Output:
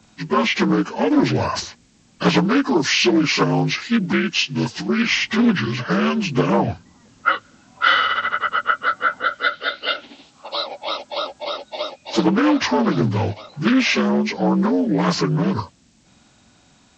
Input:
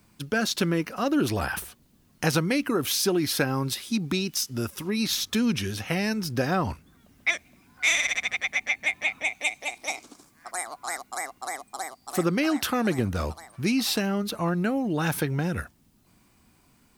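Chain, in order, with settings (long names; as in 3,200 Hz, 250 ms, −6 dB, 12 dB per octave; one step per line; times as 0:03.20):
partials spread apart or drawn together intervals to 78%
0:09.53–0:09.94: low-pass with resonance 4,100 Hz, resonance Q 2
highs frequency-modulated by the lows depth 0.25 ms
level +9 dB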